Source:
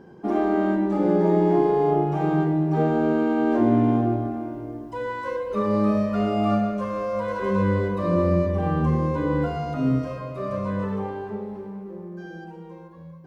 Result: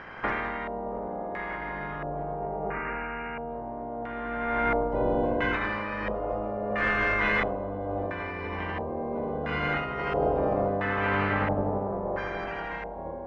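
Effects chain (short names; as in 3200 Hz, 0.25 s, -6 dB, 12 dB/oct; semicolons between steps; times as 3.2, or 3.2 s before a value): spectral limiter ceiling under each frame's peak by 30 dB; multi-head echo 81 ms, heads first and second, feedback 63%, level -8 dB; negative-ratio compressor -28 dBFS, ratio -1; LFO low-pass square 0.74 Hz 650–2000 Hz; 2.39–3.5 brick-wall FIR low-pass 2900 Hz; ending taper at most 180 dB/s; gain -4.5 dB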